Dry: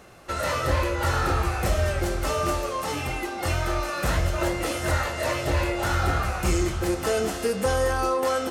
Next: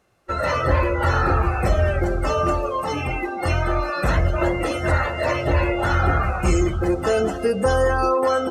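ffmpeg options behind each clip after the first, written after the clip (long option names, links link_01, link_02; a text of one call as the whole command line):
ffmpeg -i in.wav -af "afftdn=noise_reduction=20:noise_floor=-33,volume=5dB" out.wav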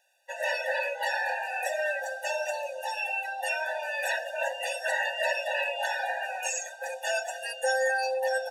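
ffmpeg -i in.wav -af "tiltshelf=frequency=970:gain=-8.5,afftfilt=real='re*eq(mod(floor(b*sr/1024/490),2),1)':imag='im*eq(mod(floor(b*sr/1024/490),2),1)':win_size=1024:overlap=0.75,volume=-3.5dB" out.wav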